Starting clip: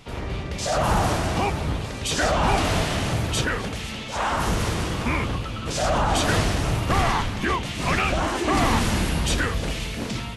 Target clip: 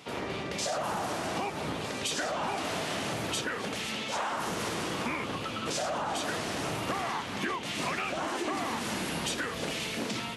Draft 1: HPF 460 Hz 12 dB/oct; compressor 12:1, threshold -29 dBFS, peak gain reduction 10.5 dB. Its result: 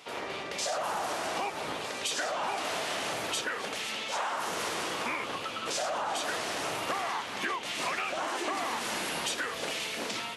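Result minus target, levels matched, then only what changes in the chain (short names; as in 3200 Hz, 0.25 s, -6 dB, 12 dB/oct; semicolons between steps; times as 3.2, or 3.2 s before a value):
250 Hz band -7.0 dB
change: HPF 220 Hz 12 dB/oct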